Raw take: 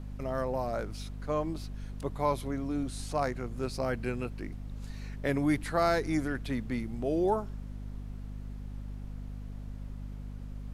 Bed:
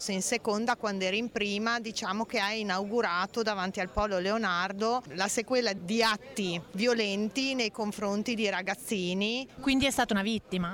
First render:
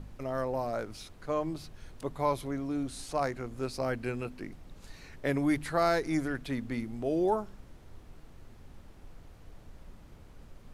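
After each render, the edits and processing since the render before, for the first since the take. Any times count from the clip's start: de-hum 50 Hz, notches 5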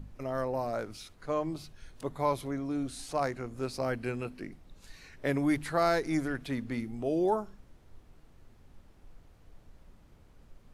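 noise print and reduce 6 dB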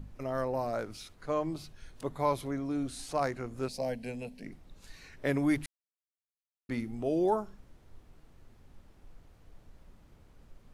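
3.68–4.46 s: static phaser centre 340 Hz, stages 6; 5.66–6.69 s: mute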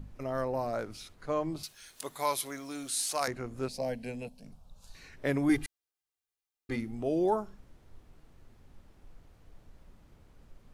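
1.63–3.28 s: tilt EQ +4.5 dB/octave; 4.28–4.95 s: static phaser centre 820 Hz, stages 4; 5.49–6.76 s: comb 2.5 ms, depth 91%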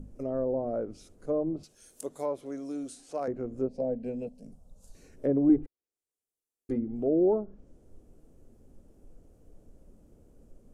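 ten-band graphic EQ 125 Hz -3 dB, 250 Hz +5 dB, 500 Hz +7 dB, 1 kHz -9 dB, 2 kHz -11 dB, 4 kHz -12 dB, 8 kHz +4 dB; low-pass that closes with the level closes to 1 kHz, closed at -25.5 dBFS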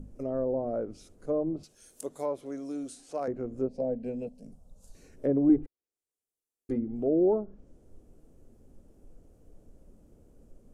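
no audible change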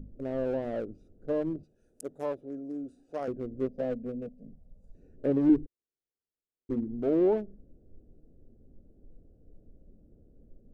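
local Wiener filter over 41 samples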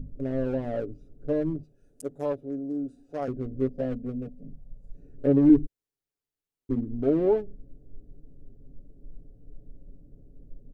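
bass shelf 190 Hz +8 dB; comb 7.1 ms, depth 55%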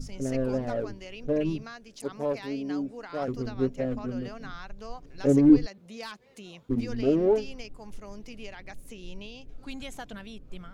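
add bed -14 dB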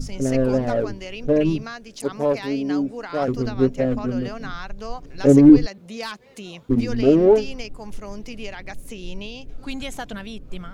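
trim +8.5 dB; peak limiter -2 dBFS, peak gain reduction 3 dB

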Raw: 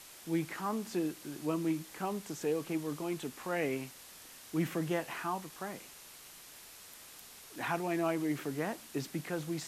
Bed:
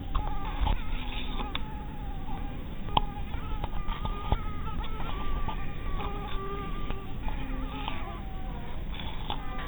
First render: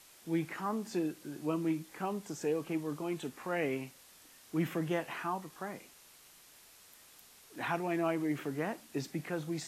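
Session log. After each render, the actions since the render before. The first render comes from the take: noise print and reduce 6 dB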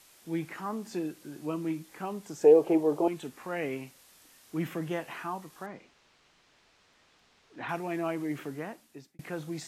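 2.44–3.08 s: high-order bell 550 Hz +15.5 dB; 5.66–7.69 s: distance through air 150 m; 8.42–9.19 s: fade out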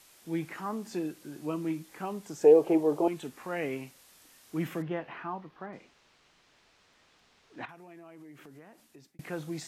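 4.82–5.73 s: distance through air 300 m; 7.65–9.09 s: compression 5:1, threshold -49 dBFS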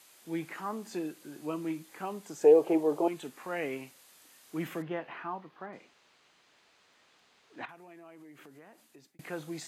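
high-pass 260 Hz 6 dB/octave; band-stop 5.5 kHz, Q 15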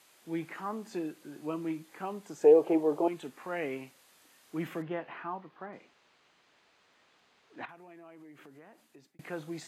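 treble shelf 4.3 kHz -6.5 dB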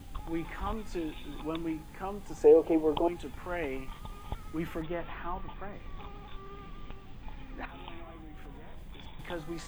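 add bed -11 dB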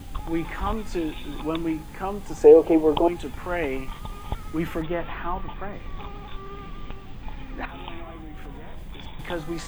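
trim +8 dB

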